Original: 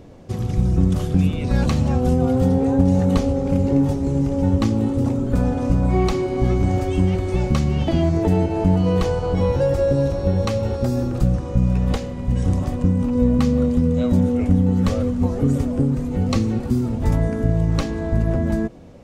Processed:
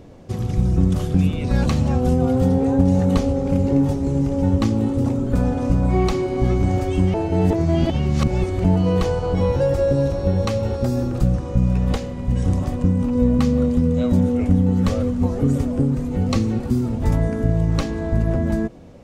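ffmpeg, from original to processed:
-filter_complex "[0:a]asplit=3[a][b][c];[a]atrim=end=7.142[d];[b]atrim=start=7.138:end=8.642,asetpts=PTS-STARTPTS,areverse[e];[c]atrim=start=8.638[f];[d][e]acrossfade=d=0.004:c1=hsin:c2=hsin[g];[g][f]acrossfade=d=0.004:c1=hsin:c2=hsin"

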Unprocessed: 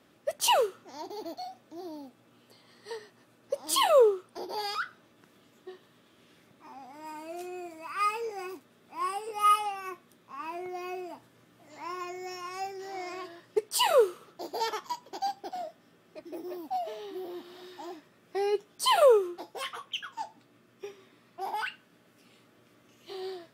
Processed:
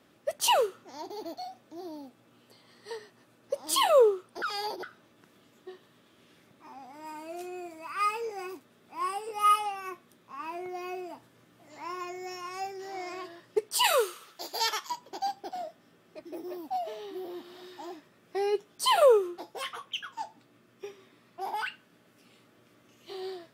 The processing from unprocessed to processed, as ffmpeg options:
-filter_complex "[0:a]asettb=1/sr,asplit=3[a][b][c];[a]atrim=end=13.844[d];[b]atrim=start=13.84:end=14.9,asetpts=PTS-STARTPTS,afade=t=in:d=0.004:c=qsin,afade=t=out:st=1.056:d=0.004:c=qsin,tiltshelf=f=940:g=-9.5[e];[c]atrim=start=14.896[f];[d][e]acrossfade=d=0.004:c1=hsin:c2=qsin[g];[g][f]acrossfade=d=0.004:c1=qsin:c2=hsin,asplit=3[h][i][j];[h]atrim=end=4.422[k];[i]atrim=start=4.418:end=4.832,asetpts=PTS-STARTPTS,areverse[l];[j]atrim=start=4.828[m];[k][l]acrossfade=d=0.004:c1=hsin:c2=hsin[n];[n][m]acrossfade=d=0.004:c1=hsin:c2=hsin"

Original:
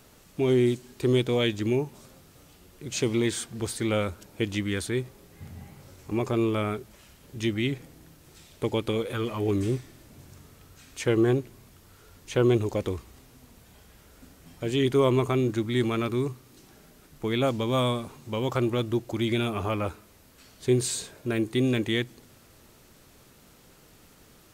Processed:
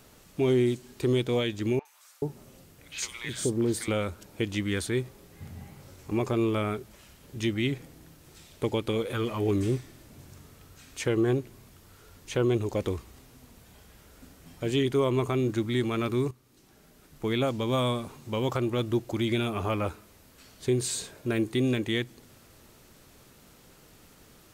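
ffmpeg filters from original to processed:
-filter_complex "[0:a]asettb=1/sr,asplit=3[a][b][c];[a]atrim=end=1.794[d];[b]atrim=start=1.79:end=3.88,asetpts=PTS-STARTPTS,afade=t=in:d=0.004:c=qsin,afade=t=out:st=2.086:d=0.004:c=qsin,acrossover=split=980|3500[e][f][g];[g]adelay=60[h];[e]adelay=430[i];[i][f][h]amix=inputs=3:normalize=0,atrim=end_sample=92169[j];[c]atrim=start=3.876[k];[d][j]acrossfade=d=0.004:c1=hsin:c2=qsin[l];[l][k]acrossfade=d=0.004:c1=qsin:c2=hsin,asplit=2[m][n];[m]atrim=end=16.31,asetpts=PTS-STARTPTS,afade=t=out:st=16.306:d=0.004:c=hsin:silence=0.237137[o];[n]atrim=start=16.31,asetpts=PTS-STARTPTS,afade=t=in:d=1.01:silence=0.237137[p];[o][p]concat=n=2:v=0:a=1,alimiter=limit=-16dB:level=0:latency=1:release=326"

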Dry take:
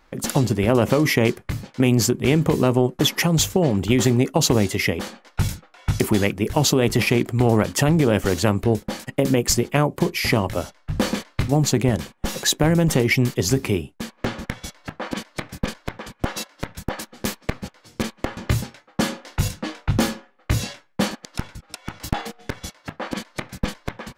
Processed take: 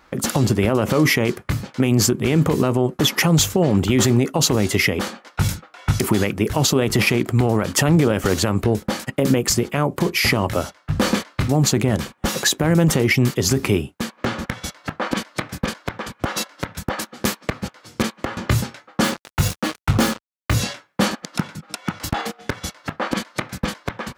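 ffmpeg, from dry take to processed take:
-filter_complex "[0:a]asettb=1/sr,asplit=3[a][b][c];[a]atrim=end=19.044[d];[b]atrim=start=19.04:end=20.54,asetpts=PTS-STARTPTS,afade=t=in:d=0.004:c=qsin,afade=t=out:st=1.496:d=0.004:c=qsin,acrusher=bits=4:mix=0:aa=0.5[e];[c]atrim=start=20.536[f];[d][e]acrossfade=d=0.004:c1=hsin:c2=qsin[g];[g][f]acrossfade=d=0.004:c1=qsin:c2=hsin,asettb=1/sr,asplit=3[h][i][j];[h]atrim=end=21.224[k];[i]atrim=start=21.22:end=21.91,asetpts=PTS-STARTPTS,afade=t=in:d=0.004:c=qsin,afade=t=out:st=0.686:d=0.004:c=qsin,highpass=f=170:t=q:w=2.1[l];[j]atrim=start=21.906[m];[k][l]acrossfade=d=0.004:c1=hsin:c2=qsin[n];[n][m]acrossfade=d=0.004:c1=qsin:c2=hsin,equalizer=f=1.3k:t=o:w=0.47:g=4,alimiter=limit=-11.5dB:level=0:latency=1:release=81,highpass=54,volume=5dB"

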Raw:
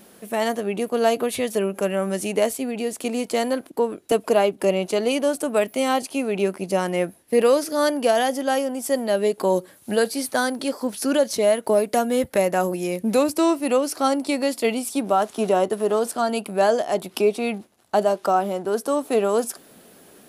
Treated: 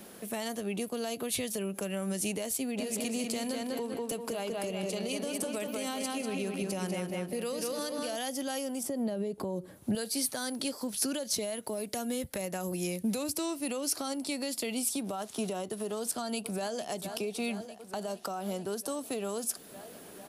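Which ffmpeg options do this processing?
-filter_complex "[0:a]asplit=3[a][b][c];[a]afade=t=out:st=2.77:d=0.02[d];[b]asplit=2[e][f];[f]adelay=195,lowpass=f=4.7k:p=1,volume=-3.5dB,asplit=2[g][h];[h]adelay=195,lowpass=f=4.7k:p=1,volume=0.51,asplit=2[i][j];[j]adelay=195,lowpass=f=4.7k:p=1,volume=0.51,asplit=2[k][l];[l]adelay=195,lowpass=f=4.7k:p=1,volume=0.51,asplit=2[m][n];[n]adelay=195,lowpass=f=4.7k:p=1,volume=0.51,asplit=2[o][p];[p]adelay=195,lowpass=f=4.7k:p=1,volume=0.51,asplit=2[q][r];[r]adelay=195,lowpass=f=4.7k:p=1,volume=0.51[s];[e][g][i][k][m][o][q][s]amix=inputs=8:normalize=0,afade=t=in:st=2.77:d=0.02,afade=t=out:st=8.15:d=0.02[t];[c]afade=t=in:st=8.15:d=0.02[u];[d][t][u]amix=inputs=3:normalize=0,asettb=1/sr,asplit=3[v][w][x];[v]atrim=end=8.834[y];[w]atrim=start=8.83:end=9.95,asetpts=PTS-STARTPTS,afade=t=in:d=0.004:c=qsin,afade=t=out:st=1.116:d=0.004:c=qsin,tiltshelf=f=1.5k:g=9[z];[x]atrim=start=9.946[aa];[y][z]acrossfade=d=0.004:c1=hsin:c2=qsin[ab];[ab][aa]acrossfade=d=0.004:c1=qsin:c2=hsin,asplit=2[ac][ad];[ad]afade=t=in:st=15.99:d=0.01,afade=t=out:st=16.88:d=0.01,aecho=0:1:450|900|1350|1800|2250|2700|3150|3600|4050|4500:0.149624|0.112218|0.0841633|0.0631224|0.0473418|0.0355064|0.0266298|0.0199723|0.0149793|0.0112344[ae];[ac][ae]amix=inputs=2:normalize=0,alimiter=limit=-17dB:level=0:latency=1:release=120,acrossover=split=180|3000[af][ag][ah];[ag]acompressor=threshold=-44dB:ratio=2[ai];[af][ai][ah]amix=inputs=3:normalize=0"

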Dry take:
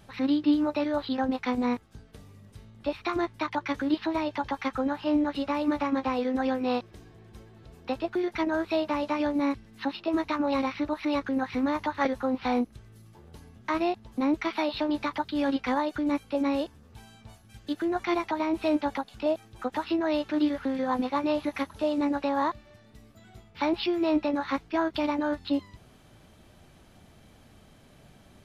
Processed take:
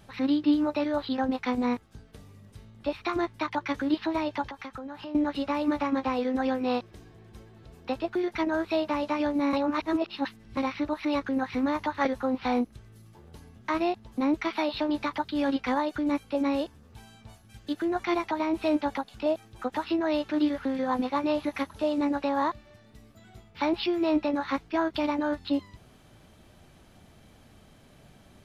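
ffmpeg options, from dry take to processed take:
-filter_complex "[0:a]asettb=1/sr,asplit=3[a][b][c];[a]atrim=end=4.434[d];[b]atrim=start=4.43:end=5.15,asetpts=PTS-STARTPTS,afade=t=in:d=0.004:c=qsin,afade=t=out:st=0.716:d=0.004:c=qsin,acompressor=threshold=-36dB:ratio=6:attack=3.2:release=140:knee=1:detection=peak[e];[c]atrim=start=5.146[f];[d][e]acrossfade=d=0.004:c1=hsin:c2=qsin[g];[g][f]acrossfade=d=0.004:c1=qsin:c2=hsin,asplit=3[h][i][j];[h]atrim=end=9.532[k];[i]atrim=start=9.528:end=10.572,asetpts=PTS-STARTPTS,areverse[l];[j]atrim=start=10.568[m];[k][l]acrossfade=d=0.004:c1=hsin:c2=hsin[n];[n][m]acrossfade=d=0.004:c1=hsin:c2=hsin"

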